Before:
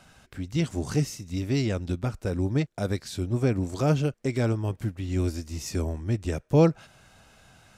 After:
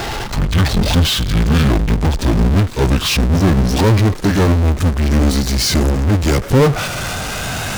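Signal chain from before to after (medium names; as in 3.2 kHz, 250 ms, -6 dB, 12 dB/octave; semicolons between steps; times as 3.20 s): pitch bend over the whole clip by -11 st ending unshifted; power-law waveshaper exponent 0.35; trim +5.5 dB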